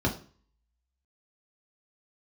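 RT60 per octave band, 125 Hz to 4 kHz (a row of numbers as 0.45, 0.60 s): 0.55, 0.45, 0.45, 0.40, 0.40, 0.40 s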